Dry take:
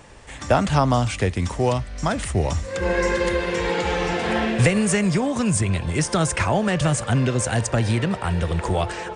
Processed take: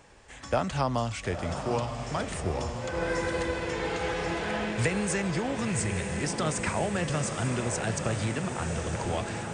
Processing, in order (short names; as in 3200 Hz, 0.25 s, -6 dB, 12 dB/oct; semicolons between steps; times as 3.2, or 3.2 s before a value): low shelf 240 Hz -4 dB; diffused feedback echo 0.918 s, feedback 63%, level -6.5 dB; speed mistake 25 fps video run at 24 fps; gain -8 dB